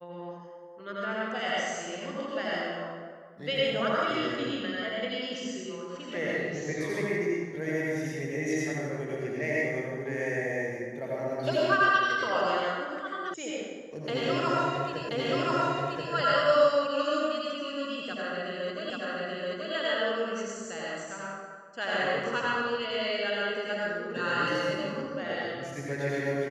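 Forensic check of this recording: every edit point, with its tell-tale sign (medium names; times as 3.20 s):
13.34 s: sound stops dead
15.09 s: repeat of the last 1.03 s
18.90 s: repeat of the last 0.83 s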